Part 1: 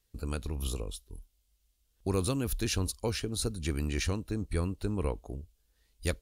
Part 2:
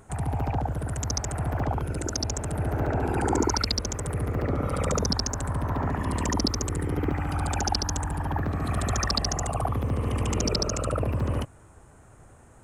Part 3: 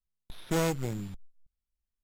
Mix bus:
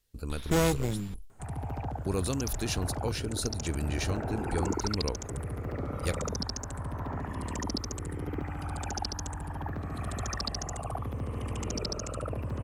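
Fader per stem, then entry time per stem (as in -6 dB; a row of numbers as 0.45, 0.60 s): -1.0, -8.0, +2.5 dB; 0.00, 1.30, 0.00 s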